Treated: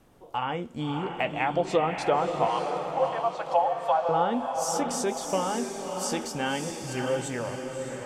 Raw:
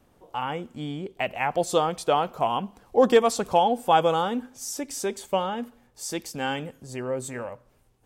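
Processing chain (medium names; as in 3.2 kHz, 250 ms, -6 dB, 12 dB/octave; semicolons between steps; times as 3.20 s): low-pass that closes with the level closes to 960 Hz, closed at -15.5 dBFS; 2.46–4.09 s: Chebyshev high-pass 530 Hz, order 8; in parallel at +1 dB: compression, threshold -31 dBFS, peak gain reduction 13.5 dB; on the sum: flange 0.56 Hz, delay 5.8 ms, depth 8.2 ms, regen -65%; echo that smears into a reverb 608 ms, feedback 45%, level -5 dB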